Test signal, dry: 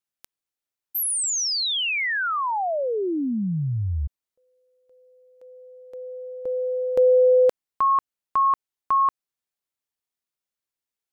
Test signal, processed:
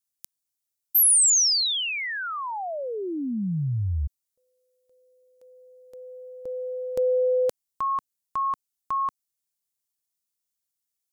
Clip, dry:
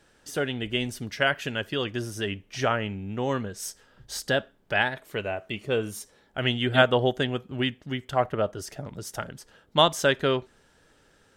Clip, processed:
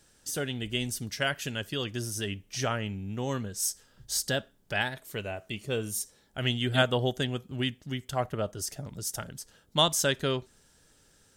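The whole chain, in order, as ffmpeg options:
ffmpeg -i in.wav -af "bass=frequency=250:gain=6,treble=frequency=4000:gain=14,volume=-6.5dB" out.wav

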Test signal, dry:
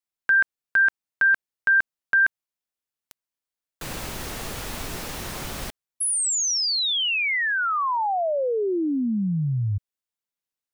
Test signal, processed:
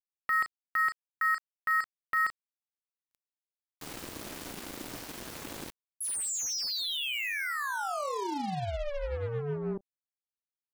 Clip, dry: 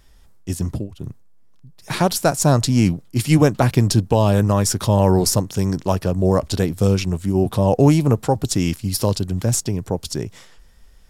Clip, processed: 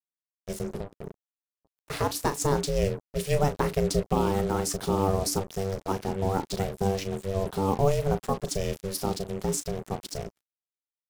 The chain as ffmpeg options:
ffmpeg -i in.wav -filter_complex "[0:a]asplit=2[link_01][link_02];[link_02]adelay=36,volume=-12dB[link_03];[link_01][link_03]amix=inputs=2:normalize=0,acrusher=bits=4:mix=0:aa=0.5,aeval=exprs='val(0)*sin(2*PI*290*n/s)':channel_layout=same,volume=-7dB" out.wav

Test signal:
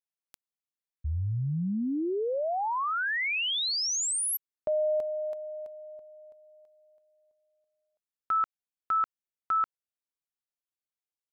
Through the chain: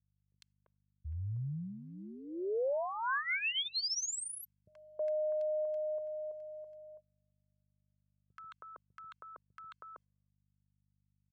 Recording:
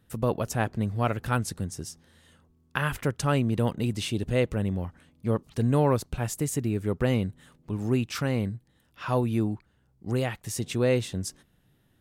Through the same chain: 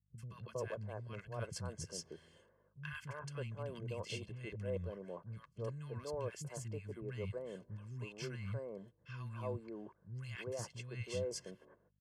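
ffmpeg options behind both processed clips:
ffmpeg -i in.wav -filter_complex "[0:a]agate=range=-31dB:threshold=-57dB:ratio=16:release=174:detection=rms,asuperstop=centerf=3800:order=8:qfactor=7.9,areverse,acompressor=threshold=-35dB:ratio=16:attack=0.15:release=536:knee=6:detection=rms,areverse,aeval=exprs='val(0)+0.0002*(sin(2*PI*50*n/s)+sin(2*PI*2*50*n/s)/2+sin(2*PI*3*50*n/s)/3+sin(2*PI*4*50*n/s)/4+sin(2*PI*5*50*n/s)/5)':channel_layout=same,highpass=110,lowpass=6600,aecho=1:1:1.9:0.69,acrossover=split=220|1300[link_01][link_02][link_03];[link_03]adelay=80[link_04];[link_02]adelay=320[link_05];[link_01][link_05][link_04]amix=inputs=3:normalize=0,volume=1.5dB" out.wav

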